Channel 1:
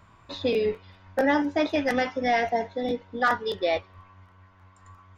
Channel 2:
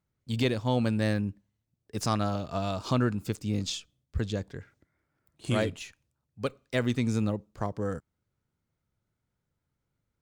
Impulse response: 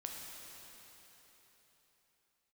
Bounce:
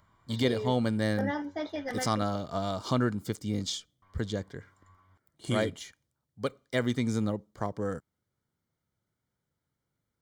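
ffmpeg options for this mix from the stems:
-filter_complex "[0:a]acompressor=mode=upward:threshold=-58dB:ratio=2.5,volume=-10.5dB,asplit=3[link_01][link_02][link_03];[link_01]atrim=end=2.23,asetpts=PTS-STARTPTS,afade=type=out:start_time=2.226:duration=0.004:curve=hsin[link_04];[link_02]atrim=start=2.23:end=4.02,asetpts=PTS-STARTPTS,volume=0[link_05];[link_03]atrim=start=4.02,asetpts=PTS-STARTPTS,afade=type=in:duration=0.004:curve=hsin[link_06];[link_04][link_05][link_06]concat=n=3:v=0:a=1[link_07];[1:a]lowshelf=frequency=65:gain=-12,volume=0dB[link_08];[link_07][link_08]amix=inputs=2:normalize=0,asuperstop=centerf=2600:order=8:qfactor=6.7"

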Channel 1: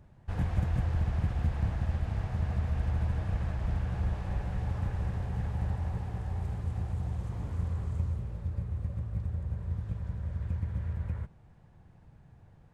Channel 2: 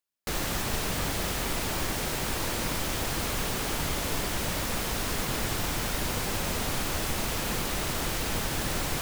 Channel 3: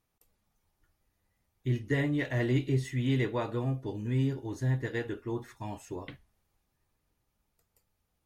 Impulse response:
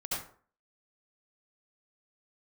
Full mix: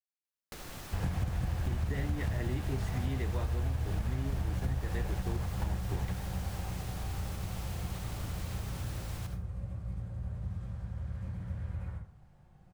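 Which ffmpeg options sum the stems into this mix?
-filter_complex "[0:a]highshelf=frequency=3600:gain=8,adelay=650,volume=1.5dB,asplit=2[link_01][link_02];[link_02]volume=-9dB[link_03];[1:a]acompressor=threshold=-35dB:ratio=6,adelay=250,volume=-10.5dB,asplit=2[link_04][link_05];[link_05]volume=-7dB[link_06];[2:a]aeval=exprs='val(0)*gte(abs(val(0)),0.00631)':channel_layout=same,volume=-3dB,asplit=2[link_07][link_08];[link_08]apad=whole_len=590268[link_09];[link_01][link_09]sidechaingate=range=-33dB:threshold=-45dB:ratio=16:detection=peak[link_10];[3:a]atrim=start_sample=2205[link_11];[link_03][link_06]amix=inputs=2:normalize=0[link_12];[link_12][link_11]afir=irnorm=-1:irlink=0[link_13];[link_10][link_04][link_07][link_13]amix=inputs=4:normalize=0,acompressor=threshold=-29dB:ratio=6"

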